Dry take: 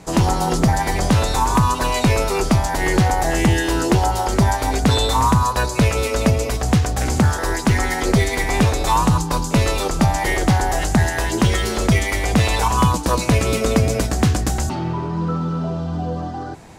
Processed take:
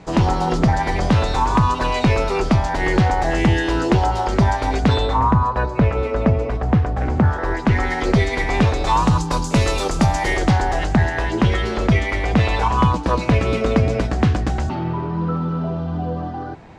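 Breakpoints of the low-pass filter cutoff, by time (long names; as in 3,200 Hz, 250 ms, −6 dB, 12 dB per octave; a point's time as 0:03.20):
0:04.83 4,000 Hz
0:05.24 1,600 Hz
0:07.20 1,600 Hz
0:08.07 4,000 Hz
0:08.77 4,000 Hz
0:09.48 8,200 Hz
0:10.03 8,200 Hz
0:10.99 3,100 Hz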